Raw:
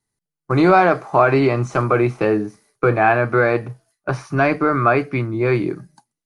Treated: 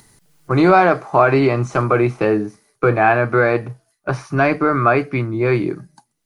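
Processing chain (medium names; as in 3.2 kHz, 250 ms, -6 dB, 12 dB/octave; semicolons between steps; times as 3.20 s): upward compressor, threshold -32 dBFS; trim +1 dB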